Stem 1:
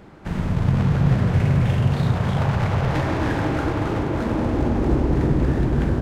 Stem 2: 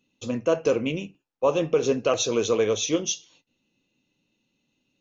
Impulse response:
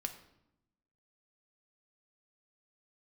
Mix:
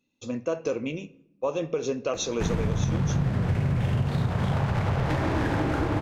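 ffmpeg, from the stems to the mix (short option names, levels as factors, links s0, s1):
-filter_complex "[0:a]adelay=2150,volume=1.41[s0];[1:a]bandreject=f=3000:w=9.5,volume=0.447,asplit=2[s1][s2];[s2]volume=0.473[s3];[2:a]atrim=start_sample=2205[s4];[s3][s4]afir=irnorm=-1:irlink=0[s5];[s0][s1][s5]amix=inputs=3:normalize=0,acompressor=threshold=0.0794:ratio=6"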